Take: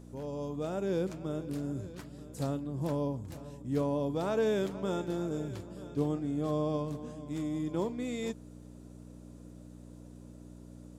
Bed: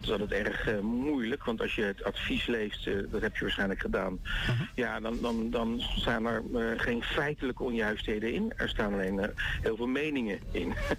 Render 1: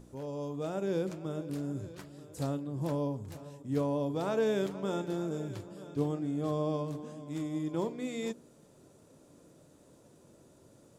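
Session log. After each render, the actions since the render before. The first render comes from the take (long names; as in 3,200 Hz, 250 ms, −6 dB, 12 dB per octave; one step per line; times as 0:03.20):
hum removal 60 Hz, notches 11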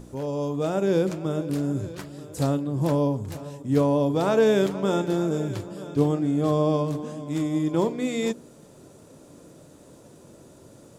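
level +10 dB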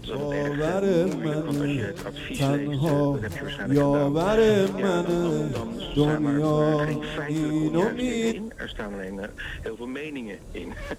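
mix in bed −2.5 dB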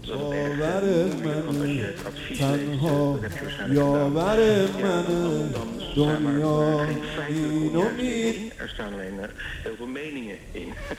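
delay with a high-pass on its return 61 ms, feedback 66%, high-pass 1,800 Hz, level −6 dB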